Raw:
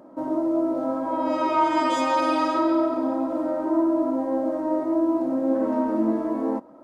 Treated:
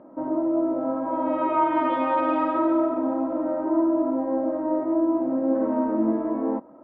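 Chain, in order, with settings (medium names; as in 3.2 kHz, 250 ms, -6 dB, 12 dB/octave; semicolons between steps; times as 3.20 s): Bessel low-pass 1.8 kHz, order 8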